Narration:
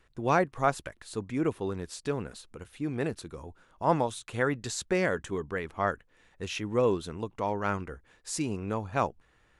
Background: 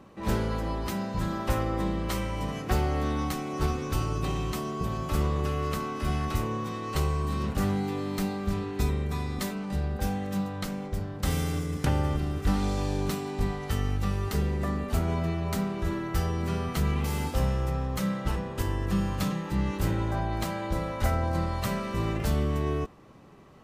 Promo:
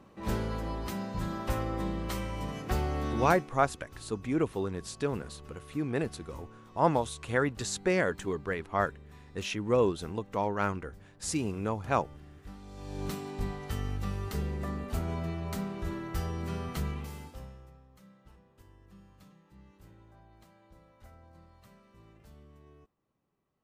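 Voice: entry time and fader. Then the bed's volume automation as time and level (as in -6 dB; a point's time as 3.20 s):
2.95 s, 0.0 dB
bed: 3.30 s -4.5 dB
3.58 s -21.5 dB
12.65 s -21.5 dB
13.05 s -6 dB
16.79 s -6 dB
17.85 s -28.5 dB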